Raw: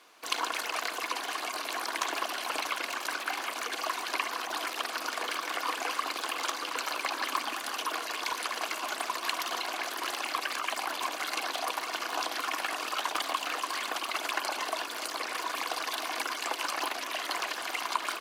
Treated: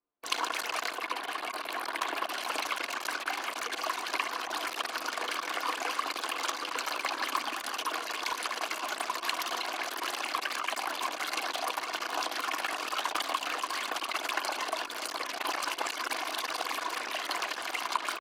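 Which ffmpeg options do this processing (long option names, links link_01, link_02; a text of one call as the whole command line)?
ffmpeg -i in.wav -filter_complex "[0:a]asettb=1/sr,asplit=3[link_01][link_02][link_03];[link_01]atrim=end=0.954[link_04];[link_02]atrim=start=0.95:end=2.3,asetpts=PTS-STARTPTS,afade=type=in:duration=0.004:curve=qsin,afade=type=out:start_time=1.346:duration=0.004:curve=qsin,equalizer=frequency=6300:width_type=o:width=0.91:gain=-7.5[link_05];[link_03]atrim=start=2.296[link_06];[link_04][link_05]acrossfade=duration=0.004:curve1=hsin:curve2=qsin[link_07];[link_07][link_06]acrossfade=duration=0.004:curve1=qsin:curve2=hsin,asplit=3[link_08][link_09][link_10];[link_08]atrim=end=15.242[link_11];[link_09]atrim=start=15.238:end=17.092,asetpts=PTS-STARTPTS,areverse[link_12];[link_10]atrim=start=17.088[link_13];[link_11][link_12]acrossfade=duration=0.004:curve1=hsin:curve2=hsin[link_14];[link_14][link_13]acrossfade=duration=0.004:curve1=hsin:curve2=hsin,anlmdn=1" out.wav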